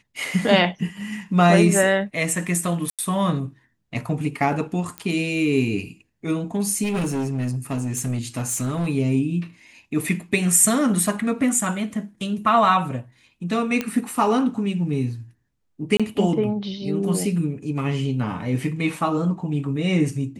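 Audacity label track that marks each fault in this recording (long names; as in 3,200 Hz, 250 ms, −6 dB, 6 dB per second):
2.900000	2.990000	drop-out 87 ms
4.980000	4.980000	click −15 dBFS
6.830000	8.870000	clipping −20.5 dBFS
13.810000	13.810000	click −10 dBFS
15.970000	16.000000	drop-out 26 ms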